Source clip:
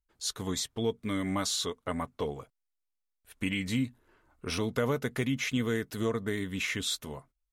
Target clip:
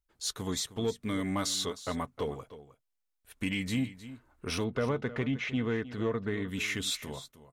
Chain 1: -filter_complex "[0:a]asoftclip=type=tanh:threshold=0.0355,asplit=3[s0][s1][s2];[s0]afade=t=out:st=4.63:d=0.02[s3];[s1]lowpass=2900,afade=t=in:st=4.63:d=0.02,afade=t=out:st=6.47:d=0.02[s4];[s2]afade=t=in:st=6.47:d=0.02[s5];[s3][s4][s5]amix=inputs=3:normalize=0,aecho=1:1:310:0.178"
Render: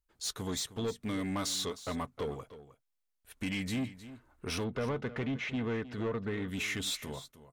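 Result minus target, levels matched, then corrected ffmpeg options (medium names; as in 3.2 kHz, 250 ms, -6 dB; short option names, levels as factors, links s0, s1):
saturation: distortion +11 dB
-filter_complex "[0:a]asoftclip=type=tanh:threshold=0.0944,asplit=3[s0][s1][s2];[s0]afade=t=out:st=4.63:d=0.02[s3];[s1]lowpass=2900,afade=t=in:st=4.63:d=0.02,afade=t=out:st=6.47:d=0.02[s4];[s2]afade=t=in:st=6.47:d=0.02[s5];[s3][s4][s5]amix=inputs=3:normalize=0,aecho=1:1:310:0.178"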